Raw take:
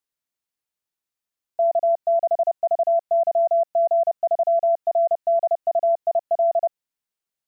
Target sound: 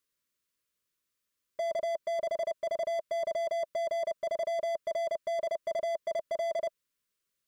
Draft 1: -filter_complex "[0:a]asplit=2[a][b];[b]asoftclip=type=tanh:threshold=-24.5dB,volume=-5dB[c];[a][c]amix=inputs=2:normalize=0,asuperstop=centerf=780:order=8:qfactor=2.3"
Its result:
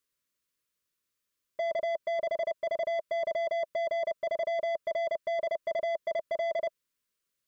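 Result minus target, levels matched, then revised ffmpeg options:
soft clip: distortion -4 dB
-filter_complex "[0:a]asplit=2[a][b];[b]asoftclip=type=tanh:threshold=-33dB,volume=-5dB[c];[a][c]amix=inputs=2:normalize=0,asuperstop=centerf=780:order=8:qfactor=2.3"

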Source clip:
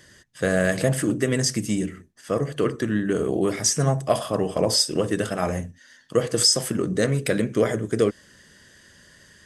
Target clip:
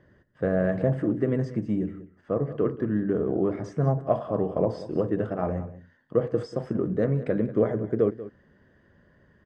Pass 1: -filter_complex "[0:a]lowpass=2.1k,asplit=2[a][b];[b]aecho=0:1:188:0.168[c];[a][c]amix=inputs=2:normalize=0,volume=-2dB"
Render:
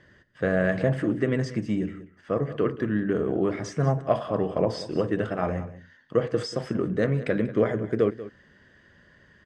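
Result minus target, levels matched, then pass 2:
2000 Hz band +8.0 dB
-filter_complex "[0:a]lowpass=990,asplit=2[a][b];[b]aecho=0:1:188:0.168[c];[a][c]amix=inputs=2:normalize=0,volume=-2dB"

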